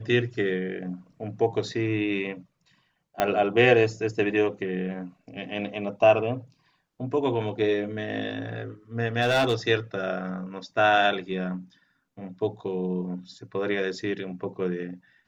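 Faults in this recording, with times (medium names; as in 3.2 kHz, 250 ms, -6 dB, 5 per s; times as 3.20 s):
3.20 s: pop -8 dBFS
9.21–9.54 s: clipped -17.5 dBFS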